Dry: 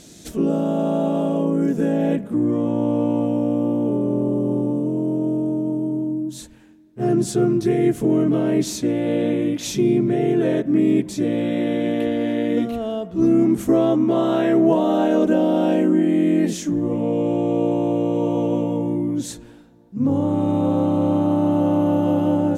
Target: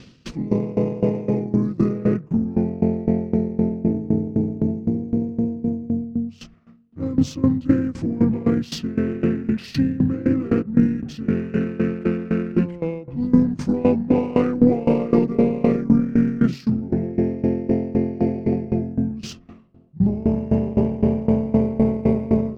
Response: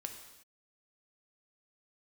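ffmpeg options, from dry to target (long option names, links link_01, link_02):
-af "aeval=exprs='0.531*(cos(1*acos(clip(val(0)/0.531,-1,1)))-cos(1*PI/2))+0.0422*(cos(2*acos(clip(val(0)/0.531,-1,1)))-cos(2*PI/2))+0.00376*(cos(3*acos(clip(val(0)/0.531,-1,1)))-cos(3*PI/2))':channel_layout=same,adynamicsmooth=sensitivity=5.5:basefreq=4400,asetrate=33038,aresample=44100,atempo=1.33484,aeval=exprs='val(0)*pow(10,-19*if(lt(mod(3.9*n/s,1),2*abs(3.9)/1000),1-mod(3.9*n/s,1)/(2*abs(3.9)/1000),(mod(3.9*n/s,1)-2*abs(3.9)/1000)/(1-2*abs(3.9)/1000))/20)':channel_layout=same,volume=5.5dB"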